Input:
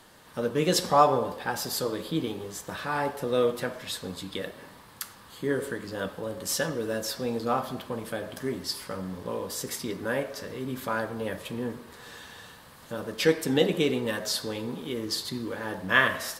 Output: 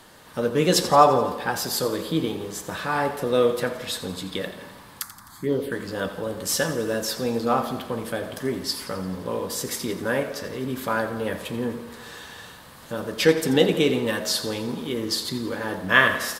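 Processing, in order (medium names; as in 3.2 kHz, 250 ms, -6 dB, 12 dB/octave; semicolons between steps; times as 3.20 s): 5.02–5.72 s: touch-sensitive phaser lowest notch 430 Hz, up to 1.7 kHz, full sweep at -24 dBFS; feedback delay 86 ms, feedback 60%, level -14 dB; trim +4.5 dB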